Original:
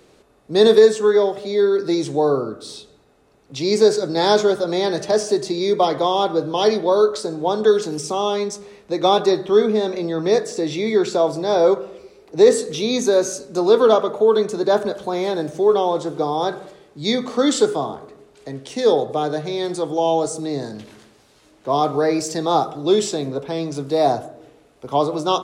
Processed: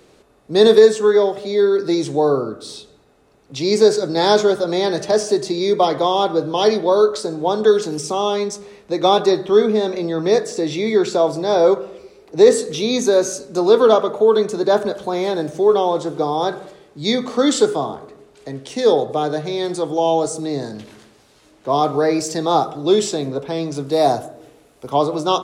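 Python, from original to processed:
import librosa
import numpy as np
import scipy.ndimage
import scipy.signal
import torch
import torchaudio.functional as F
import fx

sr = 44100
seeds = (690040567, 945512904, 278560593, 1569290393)

y = fx.high_shelf(x, sr, hz=8000.0, db=11.0, at=(23.92, 24.9))
y = y * 10.0 ** (1.5 / 20.0)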